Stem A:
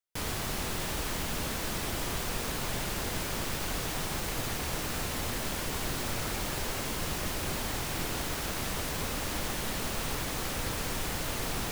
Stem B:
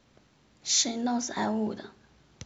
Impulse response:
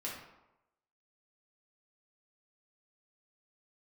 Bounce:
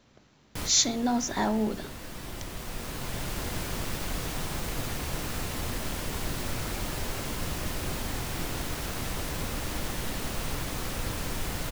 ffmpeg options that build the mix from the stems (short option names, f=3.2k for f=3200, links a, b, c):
-filter_complex "[0:a]lowshelf=f=230:g=5,adelay=400,volume=-3dB,asplit=2[a][b];[b]volume=-9.5dB[c];[1:a]volume=2dB,asplit=2[d][e];[e]apad=whole_len=534199[f];[a][f]sidechaincompress=threshold=-40dB:ratio=8:attack=8.5:release=1300[g];[2:a]atrim=start_sample=2205[h];[c][h]afir=irnorm=-1:irlink=0[i];[g][d][i]amix=inputs=3:normalize=0"